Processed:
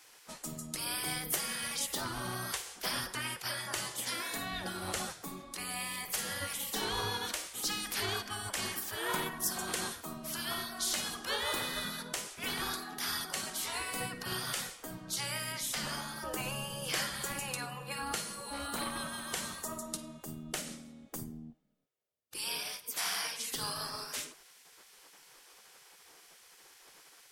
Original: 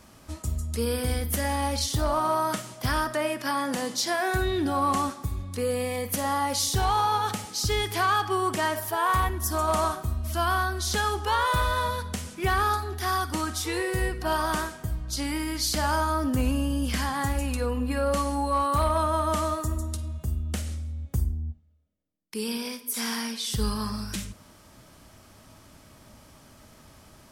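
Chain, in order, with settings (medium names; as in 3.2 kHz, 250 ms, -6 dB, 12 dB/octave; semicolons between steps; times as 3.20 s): 15.52–16.16 s: treble shelf 5.4 kHz -5.5 dB; spectral gate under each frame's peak -15 dB weak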